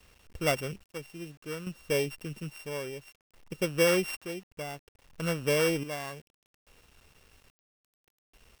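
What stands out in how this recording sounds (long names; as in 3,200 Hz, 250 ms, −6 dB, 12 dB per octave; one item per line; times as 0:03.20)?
a buzz of ramps at a fixed pitch in blocks of 16 samples
chopped level 0.6 Hz, depth 65%, duty 50%
a quantiser's noise floor 10 bits, dither none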